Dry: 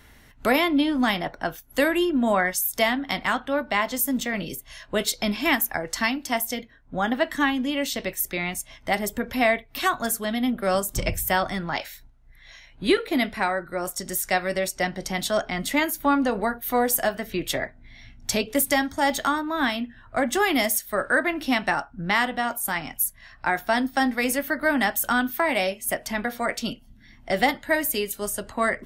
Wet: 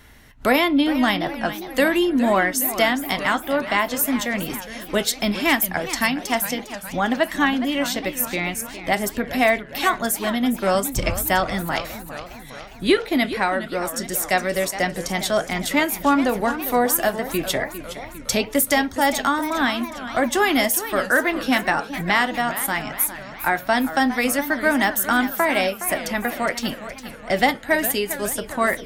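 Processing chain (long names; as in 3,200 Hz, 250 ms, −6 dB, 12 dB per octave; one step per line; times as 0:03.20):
feedback echo with a swinging delay time 409 ms, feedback 59%, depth 204 cents, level −12.5 dB
level +3 dB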